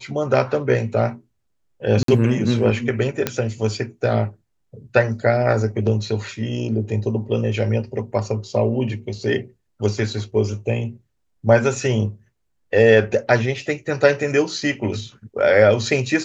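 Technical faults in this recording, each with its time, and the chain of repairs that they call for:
2.03–2.08 gap 53 ms
3.27 pop -4 dBFS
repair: de-click; interpolate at 2.03, 53 ms

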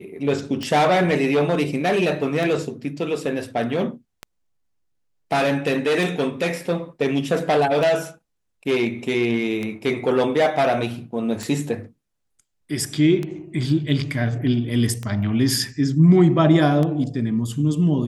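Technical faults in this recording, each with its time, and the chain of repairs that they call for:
tick 33 1/3 rpm -14 dBFS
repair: de-click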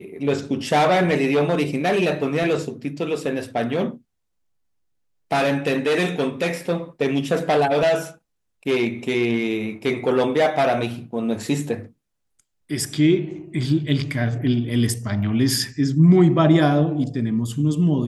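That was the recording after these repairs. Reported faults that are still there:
none

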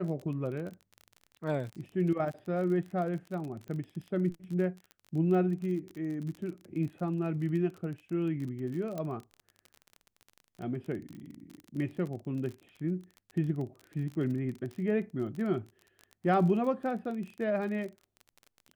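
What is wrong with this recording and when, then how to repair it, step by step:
crackle 33/s -38 dBFS
8.98 pop -24 dBFS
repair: de-click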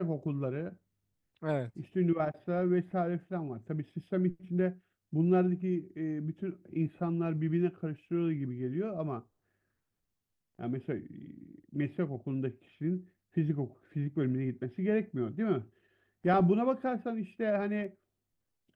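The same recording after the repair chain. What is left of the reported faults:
none

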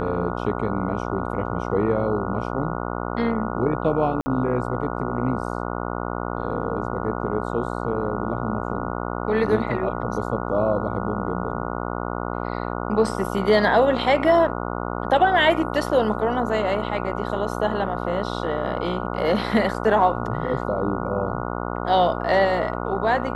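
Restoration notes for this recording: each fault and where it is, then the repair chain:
buzz 60 Hz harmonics 24 -28 dBFS
4.21–4.26 gap 50 ms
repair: de-hum 60 Hz, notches 24; interpolate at 4.21, 50 ms

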